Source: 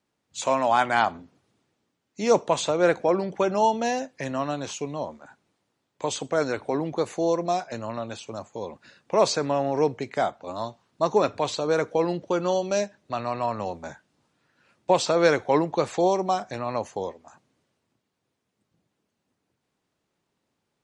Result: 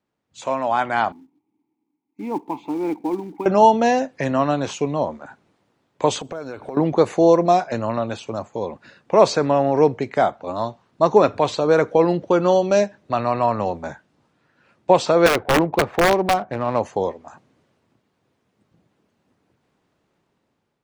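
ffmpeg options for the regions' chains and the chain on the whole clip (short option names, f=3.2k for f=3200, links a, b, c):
-filter_complex "[0:a]asettb=1/sr,asplit=3[a][b][c];[a]atrim=end=1.124[d];[b]atrim=start=1.12:end=3.46,asetpts=PTS-STARTPTS,afade=t=in:d=0.004:c=qsin,afade=t=out:st=2.336:d=0.004:c=qsin,asplit=3[e][f][g];[e]bandpass=f=300:t=q:w=8,volume=0dB[h];[f]bandpass=f=870:t=q:w=8,volume=-6dB[i];[g]bandpass=f=2.24k:t=q:w=8,volume=-9dB[j];[h][i][j]amix=inputs=3:normalize=0,tiltshelf=f=1.2k:g=4,acrusher=bits=5:mode=log:mix=0:aa=0.000001[k];[c]atrim=start=3.456[l];[d][k]acrossfade=d=0.004:c1=hsin:c2=qsin[m];[m][l]acrossfade=d=0.004:c1=qsin:c2=hsin,asettb=1/sr,asplit=3[n][o][p];[n]atrim=end=6.204[q];[o]atrim=start=6.2:end=6.77,asetpts=PTS-STARTPTS,afade=t=in:d=0.004:c=qsin,afade=t=out:st=0.566:d=0.004:c=qsin,bandreject=f=1.9k:w=6.4,acompressor=threshold=-39dB:ratio=5:attack=3.2:release=140:knee=1:detection=peak,acrusher=bits=9:mode=log:mix=0:aa=0.000001[r];[p]atrim=start=6.766[s];[q][r]acrossfade=d=0.004:c1=hsin:c2=qsin[t];[t][s]acrossfade=d=0.004:c1=qsin:c2=hsin,asettb=1/sr,asplit=3[u][v][w];[u]atrim=end=15.264[x];[v]atrim=start=15.26:end=16.8,asetpts=PTS-STARTPTS,afade=t=in:d=0.004:c=qsin,afade=t=out:st=1.536:d=0.004:c=qsin,adynamicsmooth=sensitivity=5:basefreq=1.1k,aeval=exprs='(mod(5.01*val(0)+1,2)-1)/5.01':c=same[y];[w]atrim=start=16.796[z];[x][y]acrossfade=d=0.004:c1=hsin:c2=qsin[aa];[aa][z]acrossfade=d=0.004:c1=qsin:c2=hsin,highshelf=f=3.6k:g=-10.5,dynaudnorm=f=560:g=5:m=11.5dB"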